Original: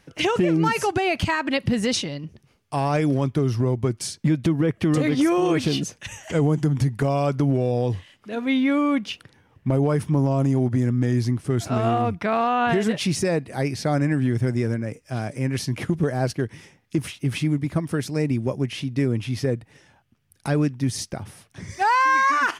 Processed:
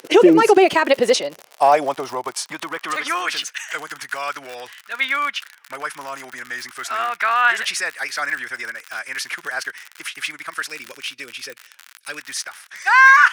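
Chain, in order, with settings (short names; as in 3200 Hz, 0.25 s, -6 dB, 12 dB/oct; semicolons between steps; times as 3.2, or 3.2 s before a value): time stretch by phase-locked vocoder 0.59×; spectral gain 10.7–12.18, 590–2200 Hz -9 dB; crackle 66/s -30 dBFS; high-pass sweep 400 Hz -> 1500 Hz, 0.56–3.38; gain +6.5 dB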